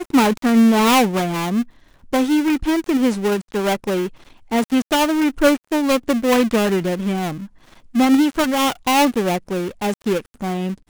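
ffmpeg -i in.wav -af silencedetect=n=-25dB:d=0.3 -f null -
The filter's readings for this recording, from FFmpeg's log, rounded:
silence_start: 1.62
silence_end: 2.13 | silence_duration: 0.51
silence_start: 4.07
silence_end: 4.52 | silence_duration: 0.44
silence_start: 7.44
silence_end: 7.95 | silence_duration: 0.51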